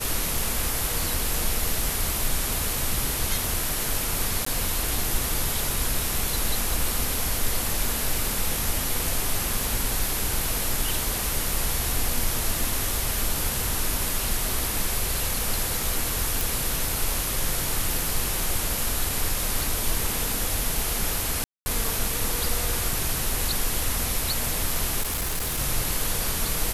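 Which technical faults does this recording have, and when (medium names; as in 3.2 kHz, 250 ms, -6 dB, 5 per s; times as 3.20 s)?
4.45–4.46 s: dropout 14 ms
16.41 s: pop
21.44–21.66 s: dropout 220 ms
25.01–25.60 s: clipped -23.5 dBFS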